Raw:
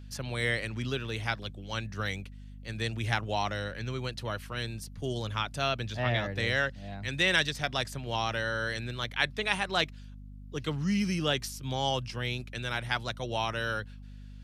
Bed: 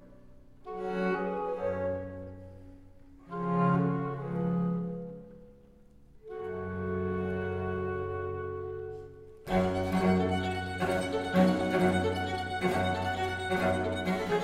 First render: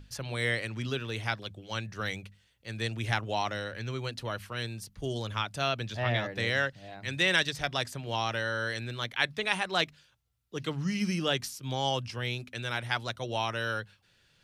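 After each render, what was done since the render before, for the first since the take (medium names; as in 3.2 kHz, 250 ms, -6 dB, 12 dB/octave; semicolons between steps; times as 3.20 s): hum notches 50/100/150/200/250 Hz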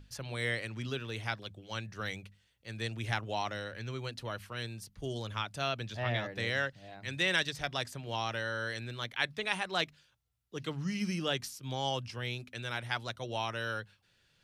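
trim -4 dB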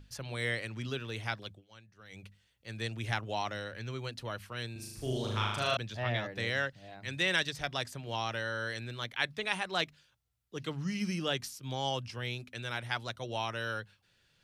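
1.49–2.25 s: dip -17 dB, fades 0.16 s; 4.72–5.77 s: flutter echo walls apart 6.6 m, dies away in 1.1 s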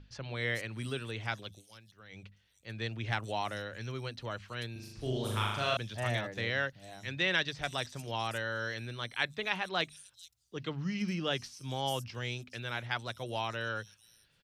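bands offset in time lows, highs 440 ms, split 5.9 kHz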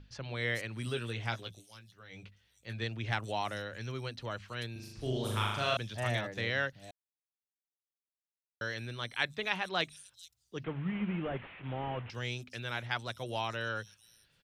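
0.85–2.84 s: doubling 17 ms -7 dB; 6.91–8.61 s: mute; 10.64–12.10 s: one-bit delta coder 16 kbps, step -44 dBFS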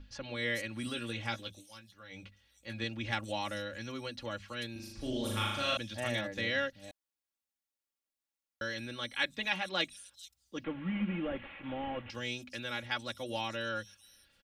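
comb 3.6 ms, depth 79%; dynamic bell 990 Hz, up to -5 dB, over -45 dBFS, Q 0.9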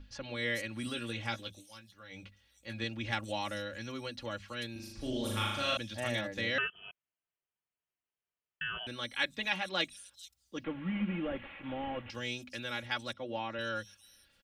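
6.58–8.87 s: frequency inversion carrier 3.2 kHz; 13.13–13.59 s: band-pass 120–2200 Hz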